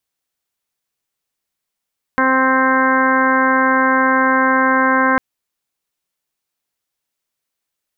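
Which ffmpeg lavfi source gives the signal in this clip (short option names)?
-f lavfi -i "aevalsrc='0.126*sin(2*PI*262*t)+0.0944*sin(2*PI*524*t)+0.0668*sin(2*PI*786*t)+0.158*sin(2*PI*1048*t)+0.0631*sin(2*PI*1310*t)+0.141*sin(2*PI*1572*t)+0.0562*sin(2*PI*1834*t)+0.0422*sin(2*PI*2096*t)':d=3:s=44100"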